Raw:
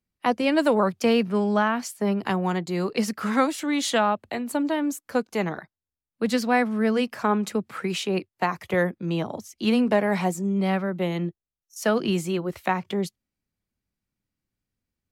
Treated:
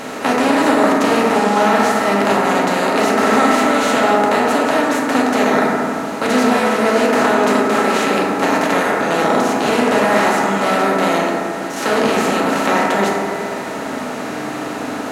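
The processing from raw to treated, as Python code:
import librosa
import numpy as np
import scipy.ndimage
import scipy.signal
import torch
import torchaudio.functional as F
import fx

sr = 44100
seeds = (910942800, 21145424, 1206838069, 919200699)

y = fx.bin_compress(x, sr, power=0.2)
y = fx.low_shelf(y, sr, hz=350.0, db=-5.0)
y = fx.rev_fdn(y, sr, rt60_s=2.4, lf_ratio=1.2, hf_ratio=0.25, size_ms=22.0, drr_db=-5.0)
y = y * librosa.db_to_amplitude(-5.0)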